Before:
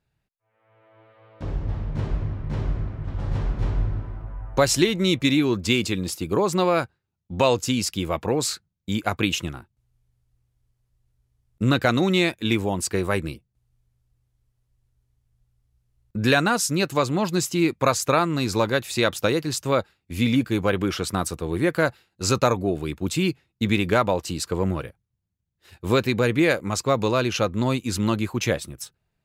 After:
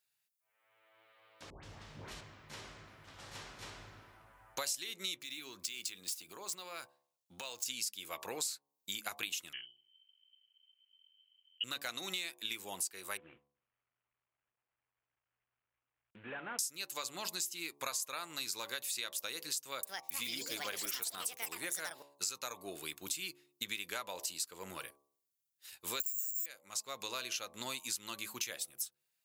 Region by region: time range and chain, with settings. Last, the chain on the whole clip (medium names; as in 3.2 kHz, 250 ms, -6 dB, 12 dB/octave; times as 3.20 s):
1.50–2.21 s: bass shelf 270 Hz +6 dB + phase dispersion highs, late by 133 ms, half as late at 1.2 kHz
5.18–7.66 s: median filter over 3 samples + high-pass 55 Hz + compression, threshold -29 dBFS
9.53–11.64 s: hum notches 60/120 Hz + frequency inversion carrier 3.1 kHz
13.17–16.59 s: CVSD coder 16 kbps + low-pass 1.1 kHz 6 dB/octave + compression 1.5:1, threshold -31 dBFS
19.57–22.67 s: high-pass 57 Hz + ever faster or slower copies 261 ms, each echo +6 st, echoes 2, each echo -6 dB
26.00–26.46 s: compression, threshold -24 dBFS + distance through air 380 m + careless resampling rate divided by 6×, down none, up zero stuff
whole clip: differentiator; de-hum 71.28 Hz, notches 16; compression 6:1, threshold -42 dBFS; trim +5.5 dB